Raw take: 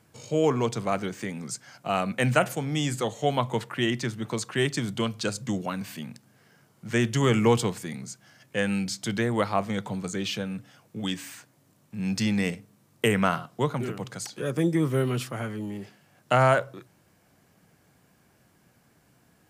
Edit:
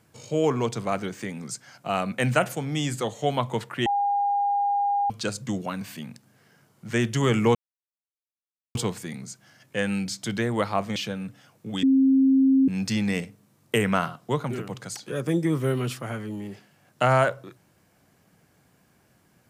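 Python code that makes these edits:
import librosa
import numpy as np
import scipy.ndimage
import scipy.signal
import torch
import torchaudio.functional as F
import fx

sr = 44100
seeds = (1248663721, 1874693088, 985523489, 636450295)

y = fx.edit(x, sr, fx.bleep(start_s=3.86, length_s=1.24, hz=809.0, db=-20.5),
    fx.insert_silence(at_s=7.55, length_s=1.2),
    fx.cut(start_s=9.76, length_s=0.5),
    fx.bleep(start_s=11.13, length_s=0.85, hz=267.0, db=-15.0), tone=tone)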